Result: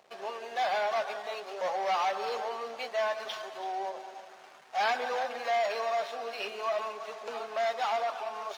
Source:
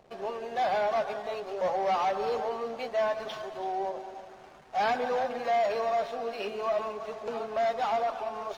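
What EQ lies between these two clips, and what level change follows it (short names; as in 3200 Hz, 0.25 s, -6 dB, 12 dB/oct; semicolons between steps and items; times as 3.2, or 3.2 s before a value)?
HPF 1300 Hz 6 dB/oct; +4.0 dB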